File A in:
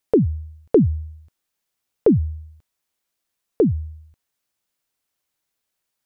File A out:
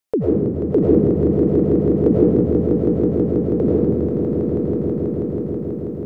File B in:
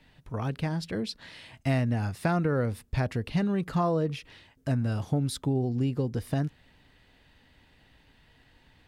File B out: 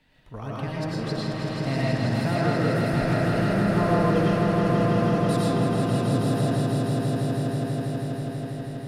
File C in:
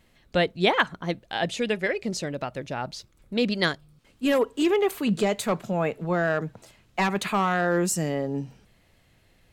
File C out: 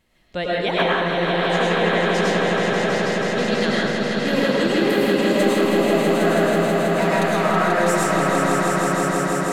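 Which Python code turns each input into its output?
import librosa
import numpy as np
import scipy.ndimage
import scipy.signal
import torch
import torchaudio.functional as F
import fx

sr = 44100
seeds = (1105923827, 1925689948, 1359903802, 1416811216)

y = fx.low_shelf(x, sr, hz=130.0, db=-3.0)
y = fx.echo_swell(y, sr, ms=162, loudest=5, wet_db=-5.5)
y = fx.rev_freeverb(y, sr, rt60_s=1.2, hf_ratio=0.55, predelay_ms=65, drr_db=-5.0)
y = y * 10.0 ** (-4.0 / 20.0)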